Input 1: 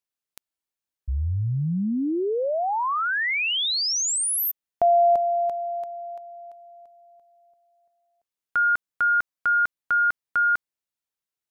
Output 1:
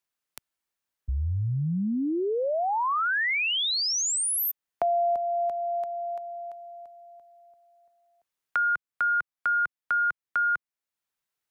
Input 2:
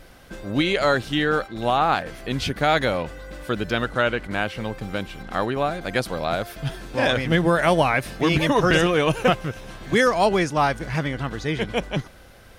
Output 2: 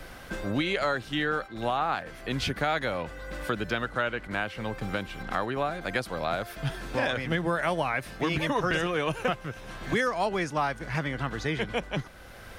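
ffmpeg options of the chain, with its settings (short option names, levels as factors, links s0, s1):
-filter_complex "[0:a]acrossover=split=110|420|1900[s0][s1][s2][s3];[s2]crystalizer=i=7:c=0[s4];[s0][s1][s4][s3]amix=inputs=4:normalize=0,acompressor=threshold=0.0355:ratio=3:attack=12:release=566:knee=6:detection=rms,volume=1.33"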